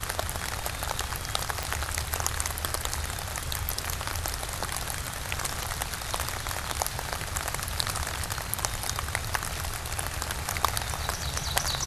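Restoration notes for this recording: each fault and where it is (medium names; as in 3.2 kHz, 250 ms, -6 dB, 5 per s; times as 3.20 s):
1.63 s: pop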